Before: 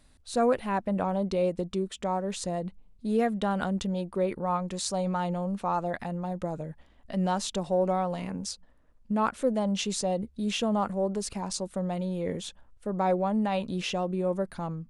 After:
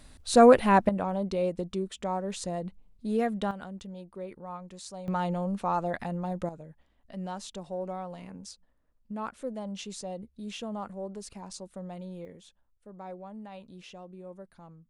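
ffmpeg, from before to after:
ffmpeg -i in.wav -af "asetnsamples=nb_out_samples=441:pad=0,asendcmd='0.89 volume volume -2dB;3.51 volume volume -12dB;5.08 volume volume 0dB;6.49 volume volume -9.5dB;12.25 volume volume -16.5dB',volume=8dB" out.wav

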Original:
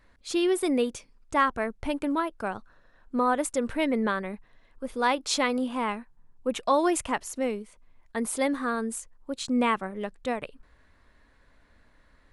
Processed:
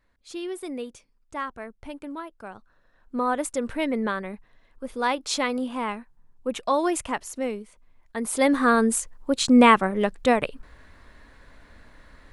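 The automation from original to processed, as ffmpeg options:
ffmpeg -i in.wav -af "volume=10dB,afade=type=in:start_time=2.48:duration=0.86:silence=0.375837,afade=type=in:start_time=8.23:duration=0.48:silence=0.316228" out.wav

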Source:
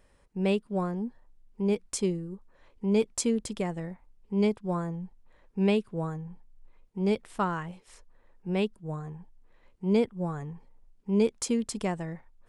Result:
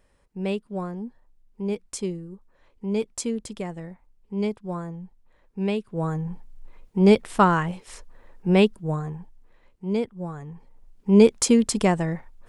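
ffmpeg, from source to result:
ffmpeg -i in.wav -af "volume=22dB,afade=type=in:start_time=5.86:duration=0.44:silence=0.251189,afade=type=out:start_time=8.51:duration=1.33:silence=0.251189,afade=type=in:start_time=10.44:duration=0.72:silence=0.281838" out.wav

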